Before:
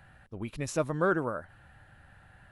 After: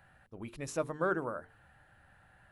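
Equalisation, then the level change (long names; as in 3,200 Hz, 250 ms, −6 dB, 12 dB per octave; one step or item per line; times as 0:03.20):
low-shelf EQ 230 Hz −5.5 dB
parametric band 3,700 Hz −3 dB 2.2 octaves
mains-hum notches 50/100/150/200/250/300/350/400/450 Hz
−3.0 dB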